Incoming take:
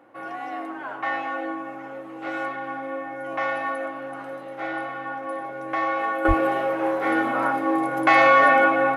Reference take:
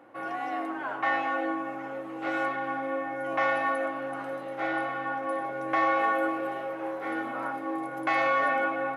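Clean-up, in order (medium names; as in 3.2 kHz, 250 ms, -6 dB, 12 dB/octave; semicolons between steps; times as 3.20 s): 6.27–6.39 s: high-pass 140 Hz 24 dB/octave; trim 0 dB, from 6.25 s -10 dB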